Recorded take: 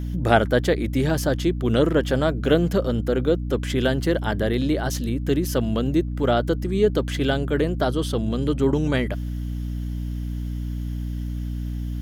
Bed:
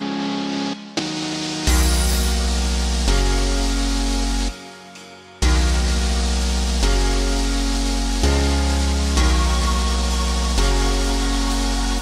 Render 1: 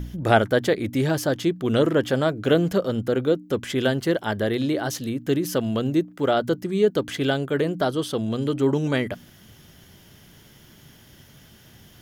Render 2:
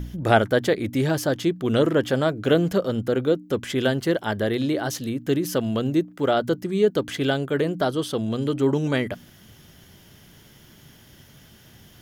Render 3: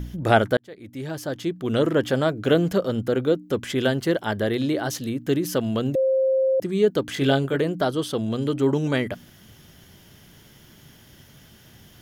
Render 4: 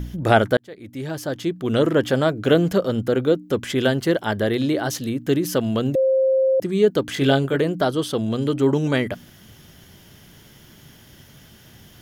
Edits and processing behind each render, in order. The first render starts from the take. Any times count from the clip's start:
de-hum 60 Hz, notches 5
nothing audible
0.57–2.03 fade in; 5.95–6.6 bleep 529 Hz -17 dBFS; 7.14–7.56 doubler 22 ms -3.5 dB
gain +2.5 dB; limiter -2 dBFS, peak gain reduction 1.5 dB

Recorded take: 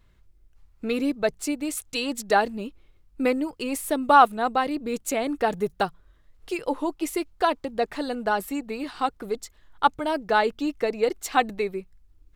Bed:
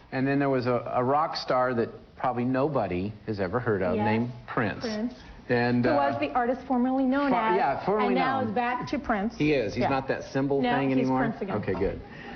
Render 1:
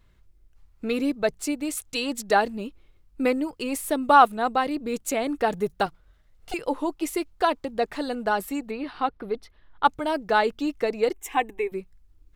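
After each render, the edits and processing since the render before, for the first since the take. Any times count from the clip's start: 5.86–6.54 minimum comb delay 1.4 ms; 8.71–9.85 running mean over 6 samples; 11.13–11.72 fixed phaser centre 910 Hz, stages 8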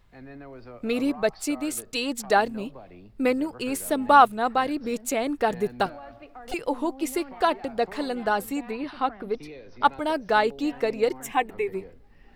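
add bed -18.5 dB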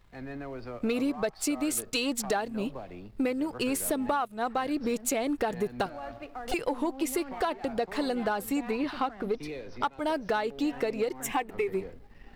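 compressor 16:1, threshold -28 dBFS, peak gain reduction 19.5 dB; sample leveller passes 1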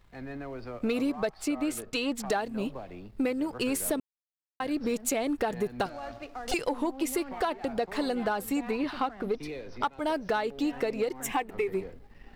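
1.35–2.26 tone controls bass 0 dB, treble -8 dB; 4–4.6 mute; 5.85–6.69 bell 5900 Hz +7.5 dB 1.4 oct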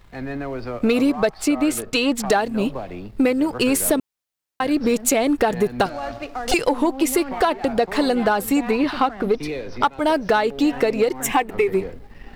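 gain +10.5 dB

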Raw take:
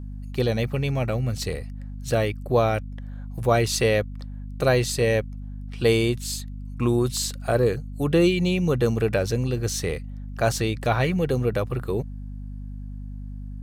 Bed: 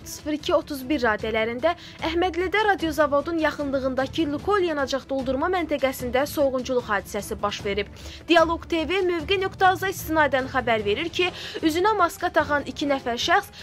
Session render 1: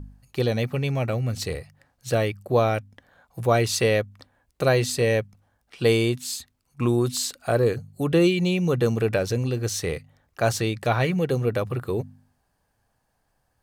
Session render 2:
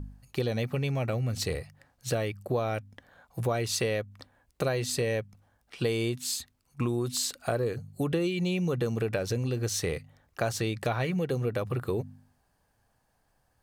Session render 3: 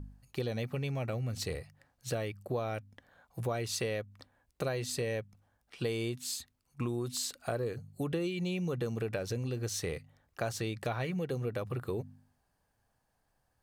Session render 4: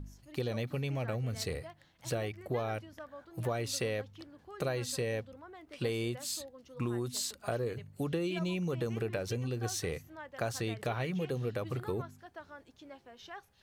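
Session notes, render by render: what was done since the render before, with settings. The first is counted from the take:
de-hum 50 Hz, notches 5
compressor 5:1, threshold -26 dBFS, peak gain reduction 10.5 dB
gain -5.5 dB
add bed -27.5 dB

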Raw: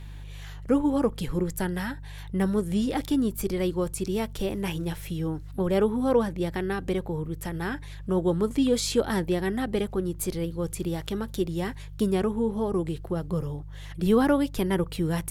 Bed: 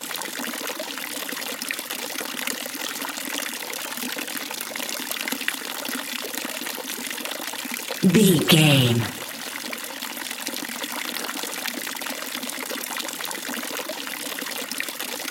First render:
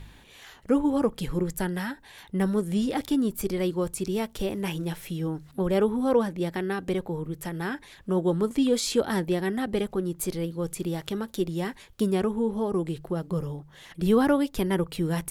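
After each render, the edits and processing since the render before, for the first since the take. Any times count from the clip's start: de-hum 50 Hz, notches 3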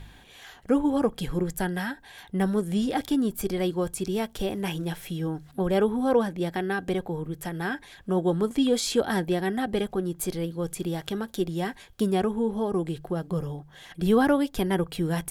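small resonant body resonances 740/1600/3300 Hz, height 8 dB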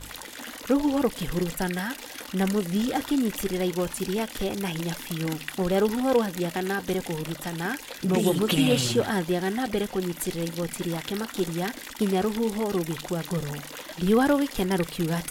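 add bed -10 dB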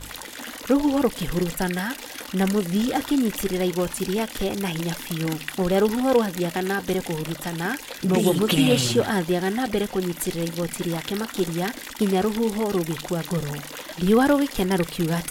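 gain +3 dB

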